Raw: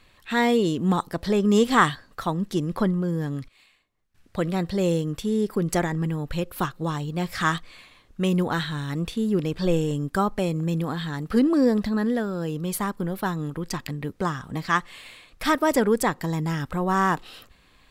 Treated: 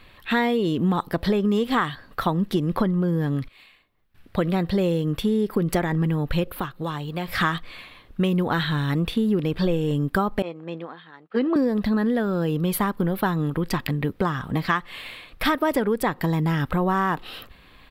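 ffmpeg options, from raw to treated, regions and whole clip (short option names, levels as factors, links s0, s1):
-filter_complex "[0:a]asettb=1/sr,asplit=3[s0][s1][s2];[s0]atrim=end=6.474[s3];[s1]atrim=start=6.47:end=7.28,asetpts=PTS-STARTPTS,afade=t=in:d=0.004:c=qsin,afade=t=out:st=0.806:d=0.004:c=qsin,bandreject=f=5500:w=18,acrossover=split=500|1500[s4][s5][s6];[s4]acompressor=threshold=0.0126:ratio=4[s7];[s5]acompressor=threshold=0.0112:ratio=4[s8];[s6]acompressor=threshold=0.00631:ratio=4[s9];[s7][s8][s9]amix=inputs=3:normalize=0[s10];[s2]atrim=start=7.276[s11];[s3][s10]acrossfade=d=0.004:c1=hsin:c2=qsin[s12];[s12][s11]acrossfade=d=0.004:c1=qsin:c2=hsin,asettb=1/sr,asplit=3[s13][s14][s15];[s13]atrim=end=10.424[s16];[s14]atrim=start=10.42:end=11.56,asetpts=PTS-STARTPTS,afade=t=in:d=0.004:c=qsin,afade=t=out:st=1.136:d=0.004:c=qsin,agate=range=0.0224:threshold=0.112:ratio=3:release=100:detection=peak,highpass=390,lowpass=3400,asplit=2[s17][s18];[s18]adelay=12,volume=0.211[s19];[s17][s19]amix=inputs=2:normalize=0,atrim=end_sample=50274[s20];[s15]atrim=start=11.556[s21];[s16][s20]acrossfade=d=0.004:c1=hsin:c2=qsin[s22];[s22][s21]acrossfade=d=0.004:c1=qsin:c2=hsin,firequalizer=gain_entry='entry(3400,0);entry(6600,-13);entry(13000,0)':delay=0.05:min_phase=1,acompressor=threshold=0.0562:ratio=10,volume=2.24"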